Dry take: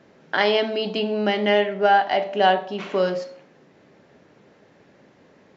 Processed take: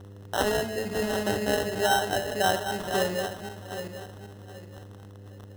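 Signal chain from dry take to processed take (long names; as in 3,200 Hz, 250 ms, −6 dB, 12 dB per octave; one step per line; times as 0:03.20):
feedback delay that plays each chunk backwards 388 ms, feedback 53%, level −6 dB
surface crackle 350 per second −35 dBFS
decimation without filtering 19×
hum with harmonics 100 Hz, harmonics 5, −44 dBFS −2 dB per octave
parametric band 90 Hz +10 dB 0.85 octaves
level −7 dB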